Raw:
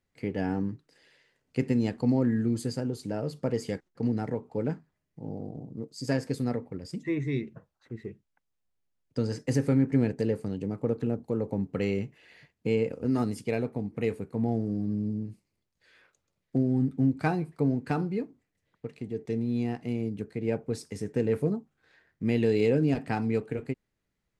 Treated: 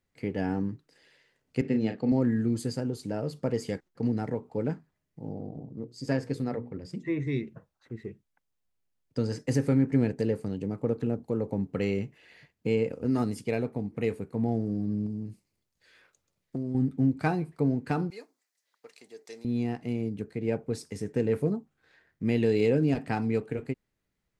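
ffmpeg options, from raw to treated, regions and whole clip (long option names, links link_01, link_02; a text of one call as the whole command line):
ffmpeg -i in.wav -filter_complex "[0:a]asettb=1/sr,asplit=3[link_01][link_02][link_03];[link_01]atrim=end=1.614[link_04];[link_02]atrim=start=1.61:end=2.12,asetpts=PTS-STARTPTS,afade=type=in:duration=0.004:curve=qsin,afade=type=out:start_time=0.506:duration=0.004:curve=qsin,highpass=150,lowpass=3800,equalizer=frequency=1000:width=7.2:gain=-14.5,asplit=2[link_05][link_06];[link_06]adelay=36,volume=-8dB[link_07];[link_05][link_07]amix=inputs=2:normalize=0,atrim=end_sample=22491[link_08];[link_03]atrim=start=2.116[link_09];[link_04][link_08]acrossfade=duration=0.004:curve1=hsin:curve2=qsin[link_10];[link_10][link_09]acrossfade=duration=0.004:curve1=qsin:curve2=hsin,asettb=1/sr,asplit=3[link_11][link_12][link_13];[link_11]atrim=end=5.334[link_14];[link_12]atrim=start=5.33:end=7.27,asetpts=PTS-STARTPTS,afade=type=in:duration=0.004:curve=qsin,afade=type=out:start_time=1.936:duration=0.004:curve=qsin,highshelf=frequency=5600:gain=-9.5,bandreject=frequency=60:width_type=h:width=6,bandreject=frequency=120:width_type=h:width=6,bandreject=frequency=180:width_type=h:width=6,bandreject=frequency=240:width_type=h:width=6,bandreject=frequency=300:width_type=h:width=6,bandreject=frequency=360:width_type=h:width=6,bandreject=frequency=420:width_type=h:width=6,bandreject=frequency=480:width_type=h:width=6[link_15];[link_13]atrim=start=7.266[link_16];[link_14][link_15]acrossfade=duration=0.004:curve1=hsin:curve2=qsin[link_17];[link_17][link_16]acrossfade=duration=0.004:curve1=qsin:curve2=hsin,asettb=1/sr,asplit=3[link_18][link_19][link_20];[link_18]atrim=end=15.064[link_21];[link_19]atrim=start=15.06:end=16.75,asetpts=PTS-STARTPTS,afade=type=in:duration=0.004:curve=qsin,afade=type=out:start_time=1.686:duration=0.004:curve=qsin,acompressor=threshold=-31dB:ratio=2.5:attack=3.2:release=140:knee=1:detection=peak,bass=frequency=250:gain=0,treble=frequency=4000:gain=4[link_22];[link_20]atrim=start=16.746[link_23];[link_21][link_22]acrossfade=duration=0.004:curve1=hsin:curve2=qsin[link_24];[link_24][link_23]acrossfade=duration=0.004:curve1=qsin:curve2=hsin,asettb=1/sr,asplit=3[link_25][link_26][link_27];[link_25]atrim=end=18.104[link_28];[link_26]atrim=start=18.1:end=19.45,asetpts=PTS-STARTPTS,afade=type=in:duration=0.004:curve=qsin,afade=type=out:start_time=1.346:duration=0.004:curve=qsin,highpass=840,highshelf=frequency=3700:width_type=q:width=1.5:gain=7[link_29];[link_27]atrim=start=19.446[link_30];[link_28][link_29]acrossfade=duration=0.004:curve1=hsin:curve2=qsin[link_31];[link_31][link_30]acrossfade=duration=0.004:curve1=qsin:curve2=hsin" out.wav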